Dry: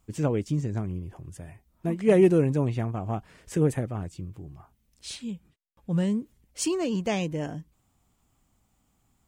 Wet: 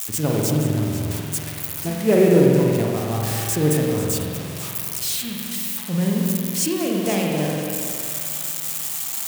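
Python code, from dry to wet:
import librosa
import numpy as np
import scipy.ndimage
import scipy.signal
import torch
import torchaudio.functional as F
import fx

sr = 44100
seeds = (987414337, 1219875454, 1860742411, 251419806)

y = x + 0.5 * 10.0 ** (-20.0 / 20.0) * np.diff(np.sign(x), prepend=np.sign(x[:1]))
y = scipy.signal.sosfilt(scipy.signal.butter(2, 68.0, 'highpass', fs=sr, output='sos'), y)
y = fx.echo_alternate(y, sr, ms=246, hz=1500.0, feedback_pct=56, wet_db=-7.0)
y = fx.rev_spring(y, sr, rt60_s=2.2, pass_ms=(46,), chirp_ms=35, drr_db=-1.5)
y = y * 10.0 ** (1.5 / 20.0)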